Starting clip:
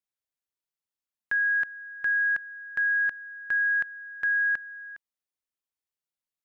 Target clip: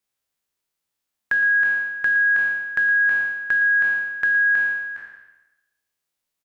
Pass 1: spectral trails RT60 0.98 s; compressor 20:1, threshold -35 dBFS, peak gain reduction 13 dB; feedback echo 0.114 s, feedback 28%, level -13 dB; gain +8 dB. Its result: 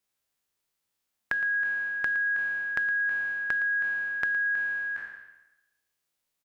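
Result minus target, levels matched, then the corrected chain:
compressor: peak gain reduction +9.5 dB
spectral trails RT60 0.98 s; compressor 20:1, threshold -25 dBFS, peak gain reduction 3.5 dB; feedback echo 0.114 s, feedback 28%, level -13 dB; gain +8 dB

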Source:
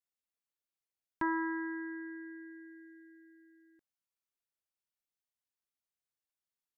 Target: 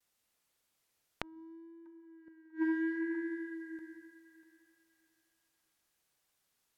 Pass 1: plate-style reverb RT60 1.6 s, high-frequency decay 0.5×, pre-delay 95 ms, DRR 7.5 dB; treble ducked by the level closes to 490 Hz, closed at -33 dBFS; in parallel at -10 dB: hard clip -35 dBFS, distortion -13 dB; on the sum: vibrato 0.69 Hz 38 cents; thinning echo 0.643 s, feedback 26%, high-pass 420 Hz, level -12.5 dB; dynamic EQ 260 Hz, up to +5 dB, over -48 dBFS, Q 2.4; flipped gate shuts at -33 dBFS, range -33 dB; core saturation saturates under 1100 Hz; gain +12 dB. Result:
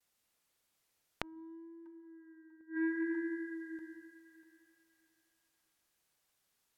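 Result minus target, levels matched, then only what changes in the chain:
hard clip: distortion -9 dB
change: hard clip -45.5 dBFS, distortion -5 dB

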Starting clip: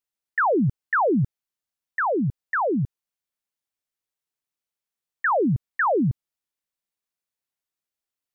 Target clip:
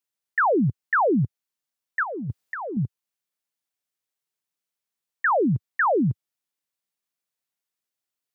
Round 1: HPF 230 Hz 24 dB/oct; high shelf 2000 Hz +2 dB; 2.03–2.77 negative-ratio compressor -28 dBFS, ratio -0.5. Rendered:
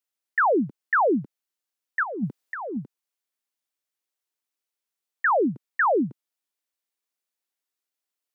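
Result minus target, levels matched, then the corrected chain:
125 Hz band -11.0 dB
HPF 100 Hz 24 dB/oct; high shelf 2000 Hz +2 dB; 2.03–2.77 negative-ratio compressor -28 dBFS, ratio -0.5

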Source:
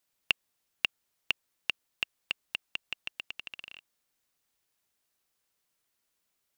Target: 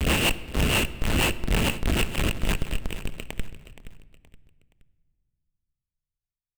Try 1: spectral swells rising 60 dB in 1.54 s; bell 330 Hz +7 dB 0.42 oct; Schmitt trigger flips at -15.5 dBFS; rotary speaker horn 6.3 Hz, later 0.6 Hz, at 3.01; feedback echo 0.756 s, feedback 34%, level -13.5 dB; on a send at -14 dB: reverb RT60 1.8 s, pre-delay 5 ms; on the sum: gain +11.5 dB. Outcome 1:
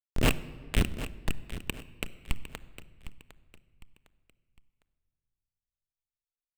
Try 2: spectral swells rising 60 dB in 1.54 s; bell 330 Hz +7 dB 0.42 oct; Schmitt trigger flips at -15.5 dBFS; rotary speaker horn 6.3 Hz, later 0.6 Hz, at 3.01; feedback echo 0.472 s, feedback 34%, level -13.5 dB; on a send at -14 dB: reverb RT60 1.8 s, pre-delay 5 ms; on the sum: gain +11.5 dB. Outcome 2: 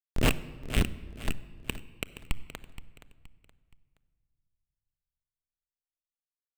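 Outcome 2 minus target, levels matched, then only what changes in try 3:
Schmitt trigger: distortion +11 dB
change: Schmitt trigger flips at -23.5 dBFS

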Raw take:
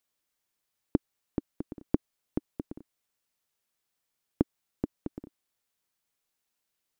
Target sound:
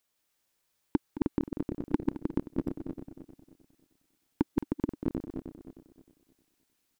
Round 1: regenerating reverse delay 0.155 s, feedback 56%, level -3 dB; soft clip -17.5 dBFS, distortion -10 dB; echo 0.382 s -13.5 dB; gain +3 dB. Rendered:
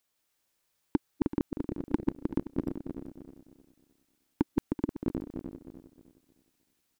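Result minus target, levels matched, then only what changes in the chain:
echo 0.165 s late
change: echo 0.217 s -13.5 dB

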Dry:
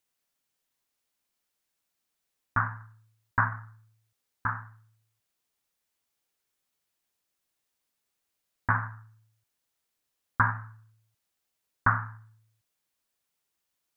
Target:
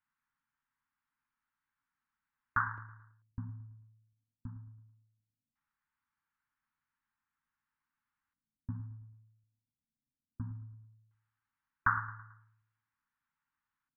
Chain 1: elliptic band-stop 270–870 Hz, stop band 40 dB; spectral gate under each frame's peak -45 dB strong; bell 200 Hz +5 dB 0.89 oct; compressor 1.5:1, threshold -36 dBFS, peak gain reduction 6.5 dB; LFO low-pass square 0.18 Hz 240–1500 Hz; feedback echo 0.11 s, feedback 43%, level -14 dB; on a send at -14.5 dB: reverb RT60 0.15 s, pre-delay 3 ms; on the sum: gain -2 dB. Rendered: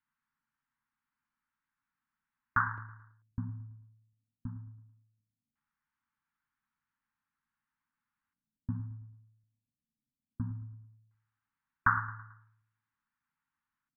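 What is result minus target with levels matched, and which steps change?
250 Hz band +3.5 dB; compressor: peak gain reduction -2.5 dB
change: compressor 1.5:1, threshold -44 dBFS, peak gain reduction 9.5 dB; remove: bell 200 Hz +5 dB 0.89 oct

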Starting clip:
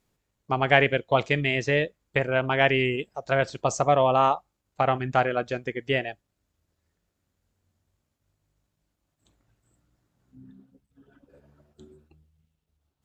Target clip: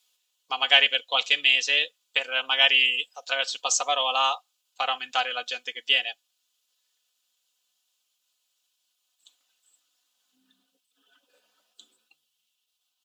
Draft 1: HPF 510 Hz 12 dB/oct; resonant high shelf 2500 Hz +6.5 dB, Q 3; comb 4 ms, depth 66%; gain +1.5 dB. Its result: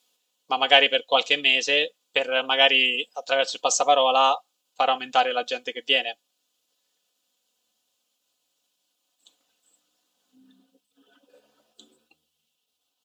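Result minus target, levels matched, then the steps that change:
500 Hz band +9.0 dB
change: HPF 1200 Hz 12 dB/oct

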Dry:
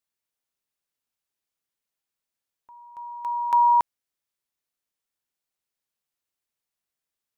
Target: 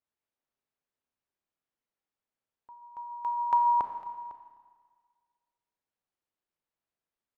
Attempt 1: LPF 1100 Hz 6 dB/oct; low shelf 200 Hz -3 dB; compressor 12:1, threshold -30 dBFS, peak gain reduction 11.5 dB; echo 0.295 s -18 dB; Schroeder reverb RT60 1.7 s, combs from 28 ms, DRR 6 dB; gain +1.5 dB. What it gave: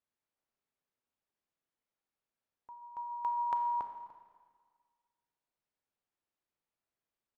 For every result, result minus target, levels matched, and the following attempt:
compressor: peak gain reduction +9 dB; echo 0.208 s early
LPF 1100 Hz 6 dB/oct; low shelf 200 Hz -3 dB; compressor 12:1, threshold -20 dBFS, peak gain reduction 2.5 dB; echo 0.295 s -18 dB; Schroeder reverb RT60 1.7 s, combs from 28 ms, DRR 6 dB; gain +1.5 dB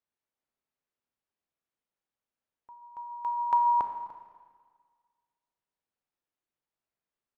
echo 0.208 s early
LPF 1100 Hz 6 dB/oct; low shelf 200 Hz -3 dB; compressor 12:1, threshold -20 dBFS, peak gain reduction 2.5 dB; echo 0.503 s -18 dB; Schroeder reverb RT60 1.7 s, combs from 28 ms, DRR 6 dB; gain +1.5 dB

